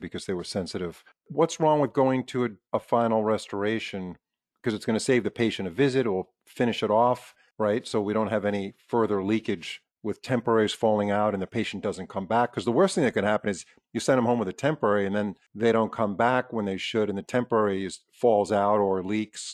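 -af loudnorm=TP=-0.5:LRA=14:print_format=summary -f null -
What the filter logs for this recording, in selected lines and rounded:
Input Integrated:    -26.1 LUFS
Input True Peak:      -9.0 dBTP
Input LRA:             1.5 LU
Input Threshold:     -36.4 LUFS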